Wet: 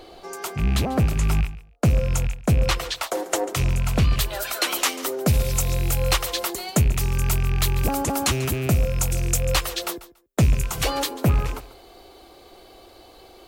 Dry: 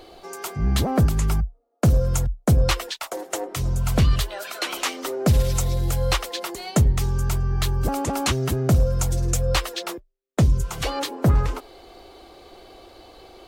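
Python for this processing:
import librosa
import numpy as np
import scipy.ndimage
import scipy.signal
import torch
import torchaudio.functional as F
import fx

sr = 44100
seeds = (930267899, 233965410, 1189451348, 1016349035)

y = fx.rattle_buzz(x, sr, strikes_db=-26.0, level_db=-23.0)
y = fx.high_shelf(y, sr, hz=9200.0, db=fx.steps((0.0, -2.0), (4.18, 10.5)))
y = fx.echo_feedback(y, sr, ms=142, feedback_pct=17, wet_db=-16.5)
y = fx.rider(y, sr, range_db=5, speed_s=0.5)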